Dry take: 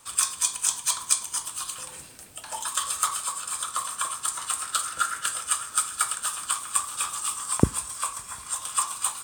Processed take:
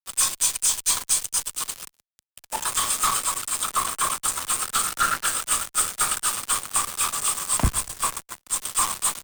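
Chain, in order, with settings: fuzz box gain 38 dB, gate -33 dBFS; added harmonics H 3 -10 dB, 4 -20 dB, 5 -28 dB, 7 -37 dB, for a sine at -9.5 dBFS; three-band expander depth 70%

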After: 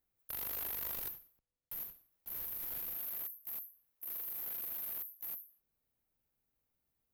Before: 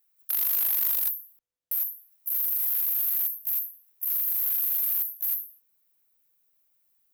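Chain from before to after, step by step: 0.95–2.95 block floating point 5-bit; tilt -3 dB/oct; gain -4 dB

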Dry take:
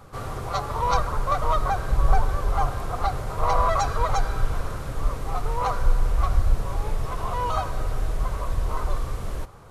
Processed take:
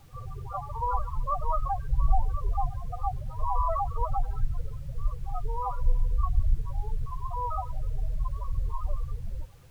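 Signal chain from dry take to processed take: loudest bins only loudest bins 8; added noise pink -57 dBFS; gain -4 dB

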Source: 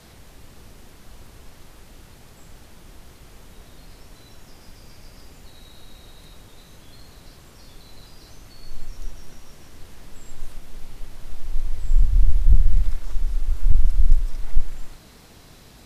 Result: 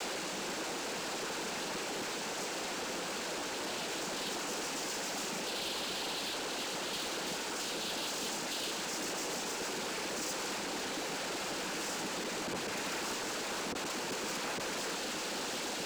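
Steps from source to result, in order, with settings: steep high-pass 270 Hz 36 dB/oct; noise vocoder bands 8; sample leveller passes 5

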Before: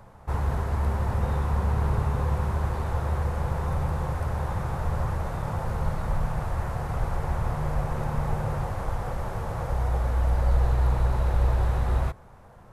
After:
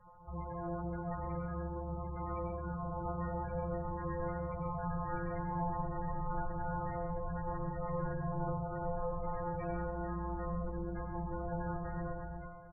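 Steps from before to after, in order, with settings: soft clip -28 dBFS, distortion -8 dB; bell 69 Hz +8 dB 0.3 oct; echo 0.346 s -7 dB; compressor 16:1, threshold -26 dBFS, peak gain reduction 6.5 dB; added harmonics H 3 -32 dB, 7 -26 dB, 8 -41 dB, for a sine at -23 dBFS; metallic resonator 170 Hz, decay 0.76 s, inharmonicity 0.002; 7.08–9.27 LPF 1700 Hz 6 dB/oct; spectral gate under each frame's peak -15 dB strong; reverb RT60 0.65 s, pre-delay 92 ms, DRR 4.5 dB; gain +14.5 dB

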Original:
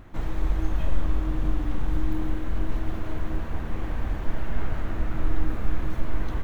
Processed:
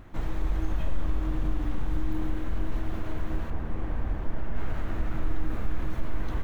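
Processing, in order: 3.5–4.56 high shelf 2300 Hz -9 dB; in parallel at +2.5 dB: limiter -18.5 dBFS, peak gain reduction 9.5 dB; on the sum: gain -8.5 dB

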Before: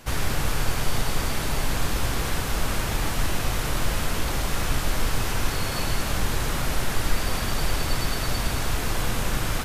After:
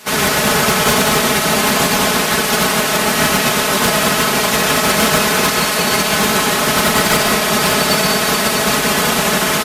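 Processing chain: spectral limiter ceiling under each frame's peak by 20 dB; HPF 110 Hz 12 dB/oct; comb 4.7 ms, depth 74%; in parallel at -3 dB: limiter -16 dBFS, peak gain reduction 11.5 dB; on the sum: hard clip -9.5 dBFS, distortion -23 dB; on a send at -4 dB: reverb RT60 0.95 s, pre-delay 0.11 s; on the sum: gain +2 dB

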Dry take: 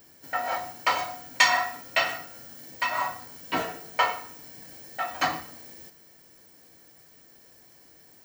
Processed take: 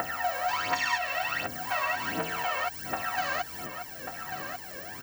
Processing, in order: stepped spectrum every 0.4 s; notches 60/120/180/240 Hz; in parallel at +1.5 dB: compressor, threshold -40 dBFS, peak gain reduction 14 dB; on the sum: phaser 0.83 Hz, delay 1.9 ms, feedback 75%; time stretch by phase-locked vocoder 0.61×; small resonant body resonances 1600/2700 Hz, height 11 dB; on a send: echo 1.141 s -16 dB; on the sum: three-band squash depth 70%; gain -2 dB

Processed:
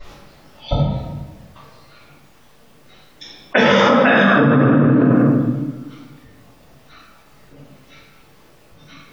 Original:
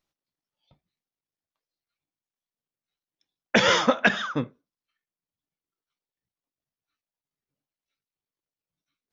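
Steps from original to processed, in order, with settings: spectral gate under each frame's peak -25 dB strong; high shelf 2400 Hz -9 dB; reverb RT60 1.3 s, pre-delay 3 ms, DRR -18 dB; fast leveller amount 100%; gain -10.5 dB

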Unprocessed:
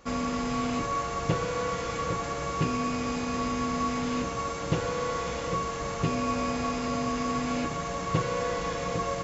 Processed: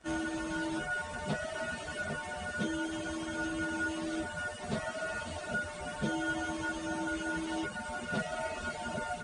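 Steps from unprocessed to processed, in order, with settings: pitch shift by moving bins +4.5 st; reverb removal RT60 0.85 s; gain -2 dB

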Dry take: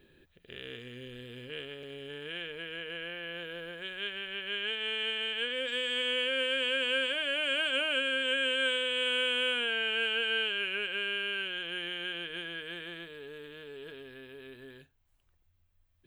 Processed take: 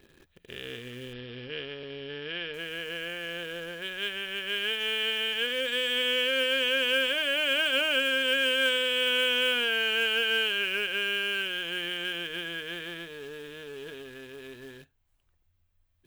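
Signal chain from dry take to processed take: in parallel at -4.5 dB: companded quantiser 4-bit; 1.13–2.54 on the sum: brick-wall FIR low-pass 5600 Hz

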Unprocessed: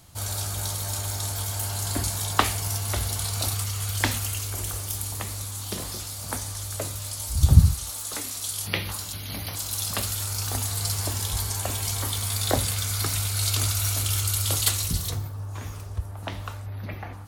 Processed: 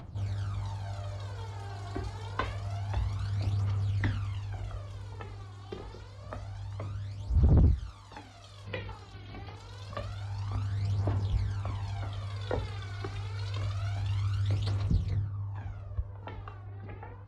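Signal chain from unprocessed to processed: high shelf 6700 Hz -7 dB, from 3.95 s -12 dB; upward compressor, threshold -37 dBFS; phaser 0.27 Hz, delay 2.8 ms, feedback 61%; hard clip -11.5 dBFS, distortion -4 dB; tape spacing loss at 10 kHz 29 dB; gain -6.5 dB

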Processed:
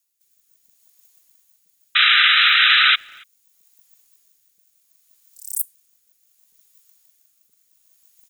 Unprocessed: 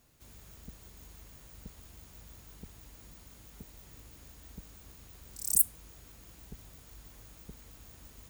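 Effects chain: differentiator; reverse; upward compressor, threshold -59 dBFS; reverse; rotary speaker horn 0.7 Hz; painted sound noise, 1.95–2.96, 1200–4000 Hz -13 dBFS; speakerphone echo 0.28 s, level -27 dB; gain -1 dB

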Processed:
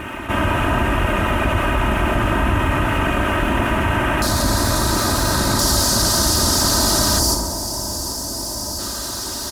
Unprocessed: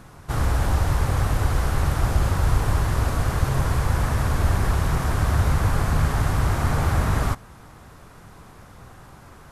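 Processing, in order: notches 50/100/150 Hz; full-wave rectifier; HPF 46 Hz; notch 2200 Hz, Q 16; comb 3.2 ms, depth 68%; feedback echo 0.782 s, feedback 56%, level -19.5 dB; reverb, pre-delay 28 ms, DRR 6 dB; 7.19–8.8 spectral gain 1100–4400 Hz -9 dB; resonant high shelf 3500 Hz -8.5 dB, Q 3, from 4.22 s +6 dB, from 5.59 s +11.5 dB; fast leveller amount 50%; gain +4.5 dB

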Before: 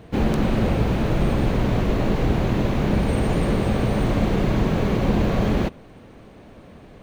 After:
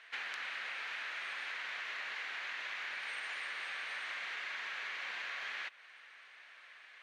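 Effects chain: ladder band-pass 2100 Hz, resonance 45%; compressor, threshold -49 dBFS, peak gain reduction 7.5 dB; tilt +3 dB/oct; gain +7.5 dB

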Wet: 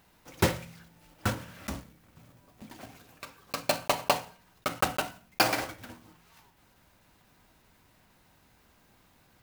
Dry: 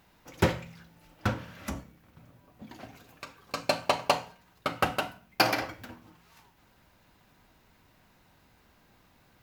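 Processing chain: block floating point 3-bit; gain -1 dB

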